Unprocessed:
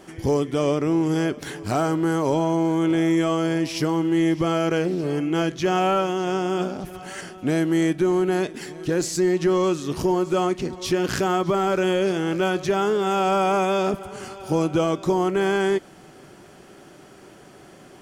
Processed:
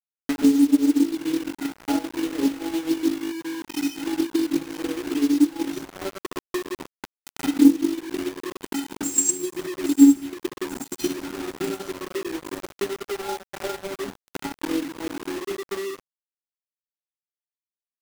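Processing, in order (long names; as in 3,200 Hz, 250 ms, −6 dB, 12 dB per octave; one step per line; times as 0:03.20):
spectral envelope exaggerated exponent 3
0:02.90–0:03.84: flat-topped bell 720 Hz −13 dB
tuned comb filter 280 Hz, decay 0.47 s, harmonics odd, mix 100%
gate pattern "x.xxxxxxx.x.x.x" 103 BPM −12 dB
high shelf with overshoot 6,600 Hz +6 dB, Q 3
delay with a high-pass on its return 819 ms, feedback 37%, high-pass 1,400 Hz, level −13 dB
convolution reverb RT60 0.45 s, pre-delay 124 ms, DRR −10 dB
bit reduction 7 bits
transient designer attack +9 dB, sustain −10 dB
level +7.5 dB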